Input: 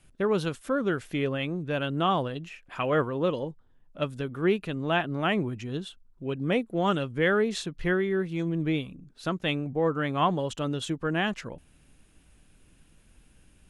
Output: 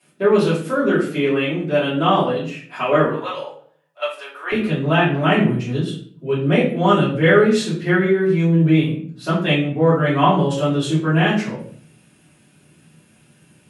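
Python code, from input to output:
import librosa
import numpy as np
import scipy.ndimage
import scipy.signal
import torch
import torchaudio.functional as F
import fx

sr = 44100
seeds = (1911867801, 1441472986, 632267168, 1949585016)

y = fx.highpass(x, sr, hz=fx.steps((0.0, 180.0), (3.06, 700.0), (4.52, 120.0)), slope=24)
y = fx.room_shoebox(y, sr, seeds[0], volume_m3=60.0, walls='mixed', distance_m=3.0)
y = y * librosa.db_to_amplitude(-3.5)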